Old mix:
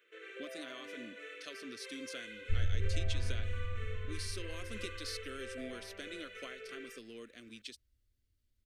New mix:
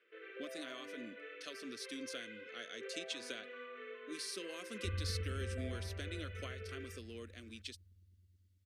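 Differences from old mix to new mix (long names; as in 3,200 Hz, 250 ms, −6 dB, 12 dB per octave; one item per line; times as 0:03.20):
first sound: add high-frequency loss of the air 300 metres
second sound: entry +2.35 s
master: add high-pass filter 100 Hz 12 dB per octave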